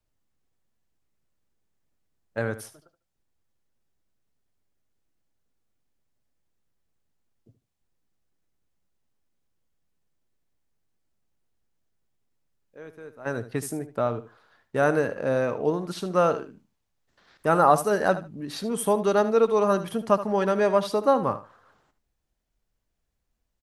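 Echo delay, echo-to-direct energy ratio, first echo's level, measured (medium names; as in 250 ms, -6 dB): 75 ms, -13.5 dB, -13.5 dB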